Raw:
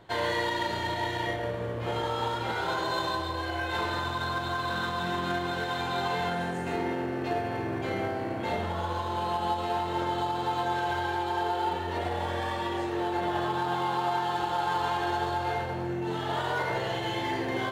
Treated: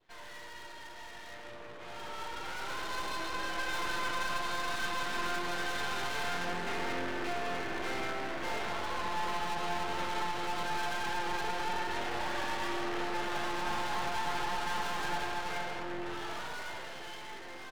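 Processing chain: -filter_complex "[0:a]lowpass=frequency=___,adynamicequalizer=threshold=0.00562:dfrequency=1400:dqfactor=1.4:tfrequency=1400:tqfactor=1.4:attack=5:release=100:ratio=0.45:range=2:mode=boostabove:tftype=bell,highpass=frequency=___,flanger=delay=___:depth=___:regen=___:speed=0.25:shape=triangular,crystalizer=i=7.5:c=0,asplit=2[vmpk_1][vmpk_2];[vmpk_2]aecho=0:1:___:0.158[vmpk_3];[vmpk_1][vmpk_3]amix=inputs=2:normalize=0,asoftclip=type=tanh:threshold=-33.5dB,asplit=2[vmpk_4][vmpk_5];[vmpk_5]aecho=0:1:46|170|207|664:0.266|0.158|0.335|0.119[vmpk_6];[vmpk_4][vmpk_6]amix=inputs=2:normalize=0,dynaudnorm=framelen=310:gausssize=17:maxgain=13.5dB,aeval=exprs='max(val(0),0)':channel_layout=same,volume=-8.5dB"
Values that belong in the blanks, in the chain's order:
2300, 240, 0.3, 7.2, 78, 86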